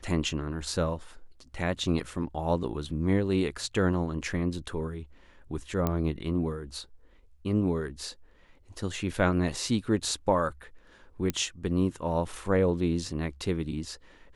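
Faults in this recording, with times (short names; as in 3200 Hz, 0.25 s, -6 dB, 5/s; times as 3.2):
5.87 pop -14 dBFS
11.3 pop -14 dBFS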